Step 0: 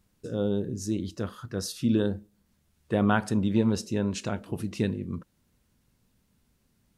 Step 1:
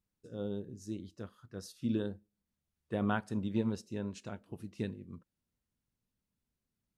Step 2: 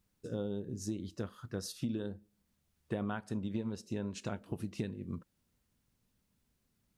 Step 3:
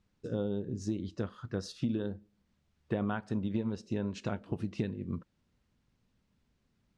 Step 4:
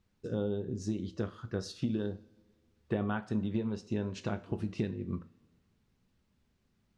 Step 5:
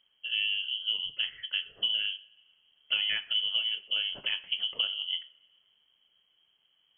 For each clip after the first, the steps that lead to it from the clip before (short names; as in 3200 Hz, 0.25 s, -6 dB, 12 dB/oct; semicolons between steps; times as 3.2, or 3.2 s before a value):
upward expander 1.5:1, over -42 dBFS; gain -7.5 dB
compressor 8:1, threshold -43 dBFS, peak gain reduction 16.5 dB; gain +9.5 dB
air absorption 110 m; gain +4 dB
two-slope reverb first 0.32 s, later 2 s, from -22 dB, DRR 9 dB
inverted band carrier 3200 Hz; gain +2.5 dB